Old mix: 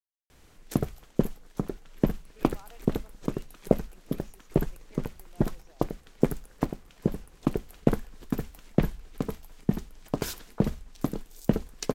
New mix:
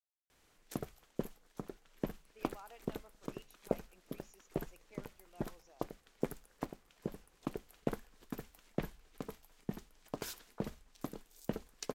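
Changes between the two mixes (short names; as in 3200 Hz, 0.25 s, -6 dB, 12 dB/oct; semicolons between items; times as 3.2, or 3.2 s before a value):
background -8.5 dB; master: add low shelf 290 Hz -10 dB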